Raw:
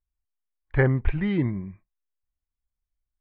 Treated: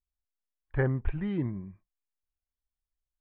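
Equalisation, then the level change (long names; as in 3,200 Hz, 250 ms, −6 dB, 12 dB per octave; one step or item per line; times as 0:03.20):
low-pass filter 3,000 Hz 12 dB per octave
parametric band 2,100 Hz −7 dB 0.3 octaves
−6.5 dB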